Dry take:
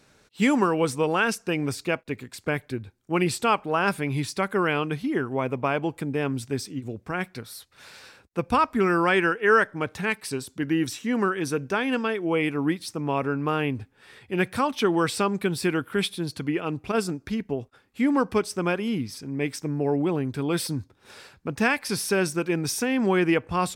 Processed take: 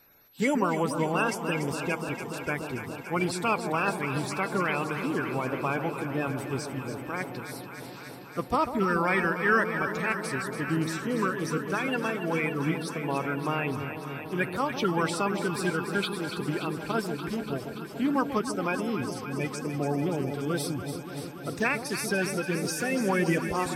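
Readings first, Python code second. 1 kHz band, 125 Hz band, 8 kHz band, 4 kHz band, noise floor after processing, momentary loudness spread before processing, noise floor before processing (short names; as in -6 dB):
-2.5 dB, -2.0 dB, -3.5 dB, -4.5 dB, -41 dBFS, 10 LU, -62 dBFS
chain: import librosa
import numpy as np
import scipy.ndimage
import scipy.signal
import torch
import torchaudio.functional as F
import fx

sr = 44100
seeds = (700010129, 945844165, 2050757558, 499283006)

y = fx.spec_quant(x, sr, step_db=30)
y = y + 10.0 ** (-55.0 / 20.0) * np.sin(2.0 * np.pi * 12000.0 * np.arange(len(y)) / sr)
y = fx.echo_alternate(y, sr, ms=144, hz=890.0, feedback_pct=89, wet_db=-8.0)
y = F.gain(torch.from_numpy(y), -4.0).numpy()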